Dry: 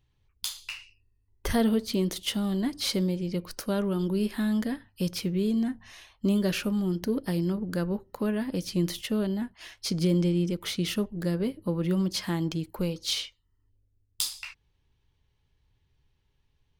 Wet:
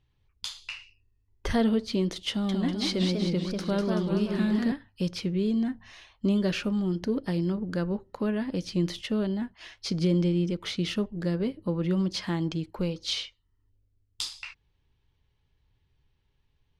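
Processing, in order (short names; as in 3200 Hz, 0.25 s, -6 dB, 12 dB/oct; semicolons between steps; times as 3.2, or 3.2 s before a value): LPF 5500 Hz 12 dB/oct; 2.3–4.72 warbling echo 0.191 s, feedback 57%, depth 202 cents, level -4 dB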